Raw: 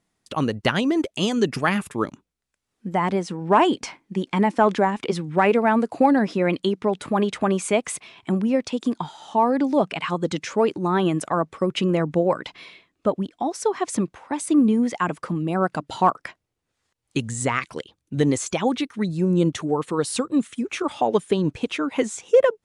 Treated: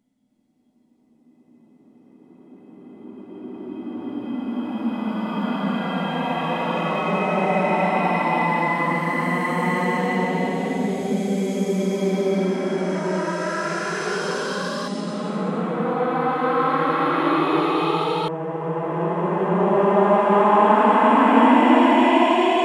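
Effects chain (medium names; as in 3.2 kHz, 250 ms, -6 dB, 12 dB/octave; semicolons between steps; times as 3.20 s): reverse spectral sustain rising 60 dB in 0.31 s; small resonant body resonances 250/480/2000/3300 Hz, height 14 dB, ringing for 90 ms; Paulstretch 22×, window 0.10 s, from 2.61 s; ever faster or slower copies 306 ms, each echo +4 st, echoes 2, each echo -6 dB; trim -3.5 dB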